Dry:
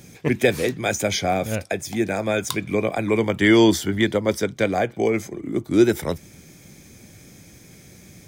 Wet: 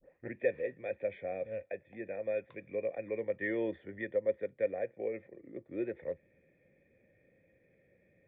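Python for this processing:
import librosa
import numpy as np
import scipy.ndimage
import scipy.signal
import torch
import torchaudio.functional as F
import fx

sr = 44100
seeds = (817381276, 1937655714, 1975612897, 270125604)

y = fx.tape_start_head(x, sr, length_s=0.33)
y = fx.formant_cascade(y, sr, vowel='e')
y = y * librosa.db_to_amplitude(-6.0)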